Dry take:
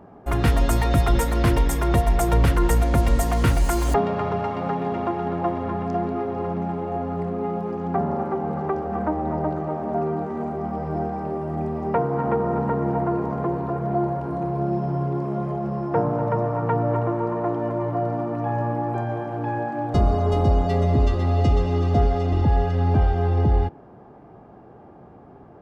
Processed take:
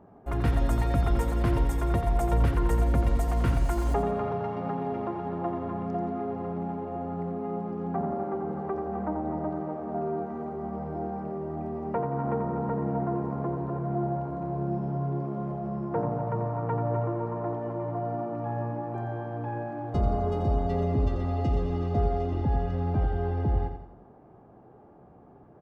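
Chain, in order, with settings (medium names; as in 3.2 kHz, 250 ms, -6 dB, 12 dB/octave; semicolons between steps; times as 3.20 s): treble shelf 2.1 kHz -8 dB; feedback delay 87 ms, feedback 43%, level -8 dB; trim -7 dB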